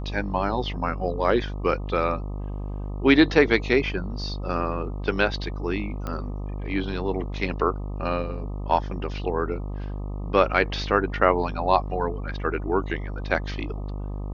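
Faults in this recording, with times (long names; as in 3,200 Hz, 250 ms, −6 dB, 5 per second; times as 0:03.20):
mains buzz 50 Hz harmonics 25 −31 dBFS
0:06.07: click −18 dBFS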